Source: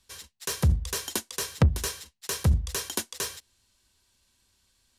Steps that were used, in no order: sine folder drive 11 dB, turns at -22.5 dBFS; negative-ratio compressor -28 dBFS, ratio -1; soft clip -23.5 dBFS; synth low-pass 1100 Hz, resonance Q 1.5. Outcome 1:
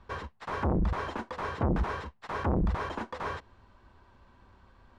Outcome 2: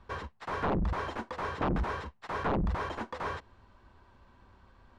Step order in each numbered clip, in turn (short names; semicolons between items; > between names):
soft clip > negative-ratio compressor > sine folder > synth low-pass; sine folder > synth low-pass > soft clip > negative-ratio compressor